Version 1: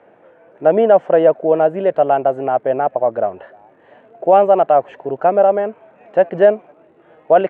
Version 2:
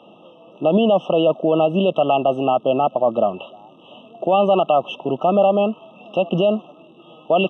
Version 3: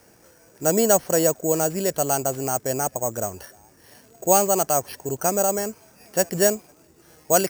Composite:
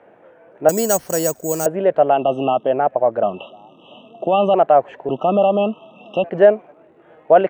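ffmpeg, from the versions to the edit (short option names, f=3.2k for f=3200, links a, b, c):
-filter_complex "[1:a]asplit=3[a][b][c];[0:a]asplit=5[d][e][f][g][h];[d]atrim=end=0.692[i];[2:a]atrim=start=0.688:end=1.662[j];[e]atrim=start=1.658:end=2.25[k];[a]atrim=start=2.09:end=2.75[l];[f]atrim=start=2.59:end=3.232[m];[b]atrim=start=3.228:end=4.542[n];[g]atrim=start=4.538:end=5.092[o];[c]atrim=start=5.088:end=6.242[p];[h]atrim=start=6.238[q];[i][j]acrossfade=d=0.004:c1=hsin:c2=hsin[r];[r][k]acrossfade=d=0.004:c1=hsin:c2=hsin[s];[s][l]acrossfade=d=0.16:c1=tri:c2=tri[t];[t][m]acrossfade=d=0.16:c1=tri:c2=tri[u];[u][n]acrossfade=d=0.004:c1=hsin:c2=hsin[v];[v][o]acrossfade=d=0.004:c1=hsin:c2=hsin[w];[w][p]acrossfade=d=0.004:c1=hsin:c2=hsin[x];[x][q]acrossfade=d=0.004:c1=hsin:c2=hsin"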